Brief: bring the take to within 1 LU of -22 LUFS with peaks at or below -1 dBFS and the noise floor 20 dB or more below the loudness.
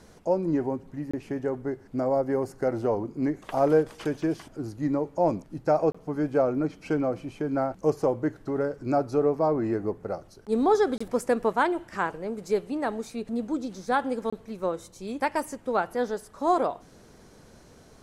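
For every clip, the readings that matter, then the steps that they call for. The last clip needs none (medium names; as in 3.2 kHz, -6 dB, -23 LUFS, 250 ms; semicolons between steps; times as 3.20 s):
dropouts 4; longest dropout 25 ms; loudness -28.0 LUFS; peak level -10.5 dBFS; loudness target -22.0 LUFS
-> interpolate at 1.11/5.92/10.98/14.30 s, 25 ms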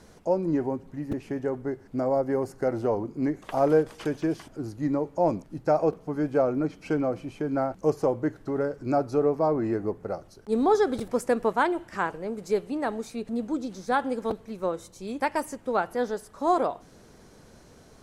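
dropouts 0; loudness -28.0 LUFS; peak level -10.5 dBFS; loudness target -22.0 LUFS
-> trim +6 dB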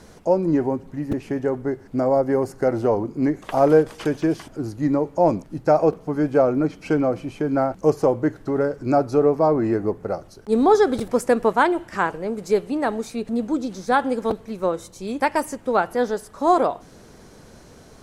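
loudness -22.0 LUFS; peak level -4.5 dBFS; noise floor -47 dBFS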